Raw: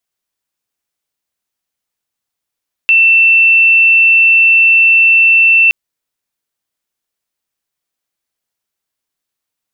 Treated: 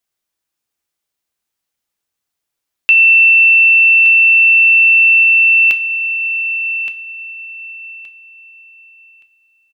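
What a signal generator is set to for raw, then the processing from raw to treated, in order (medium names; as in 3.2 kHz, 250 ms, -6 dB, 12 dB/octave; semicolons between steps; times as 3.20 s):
tone sine 2.68 kHz -4.5 dBFS 2.82 s
feedback delay 1171 ms, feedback 23%, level -10 dB; two-slope reverb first 0.34 s, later 4.9 s, from -20 dB, DRR 9 dB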